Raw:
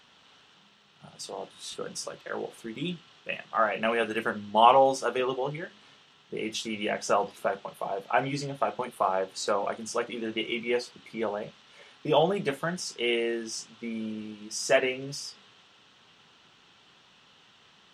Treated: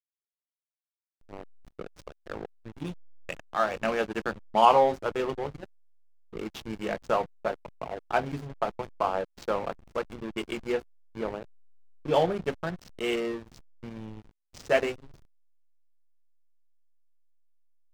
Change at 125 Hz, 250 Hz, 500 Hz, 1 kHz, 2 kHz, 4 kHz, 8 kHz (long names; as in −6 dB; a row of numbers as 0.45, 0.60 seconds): −0.5, −2.0, −1.0, −1.0, −3.5, −6.0, −13.5 decibels